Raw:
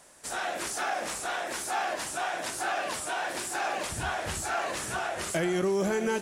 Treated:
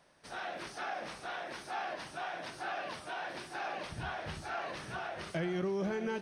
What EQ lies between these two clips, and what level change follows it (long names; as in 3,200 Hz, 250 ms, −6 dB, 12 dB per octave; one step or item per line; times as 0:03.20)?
Savitzky-Golay smoothing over 15 samples
parametric band 150 Hz +6.5 dB 0.74 octaves
−8.0 dB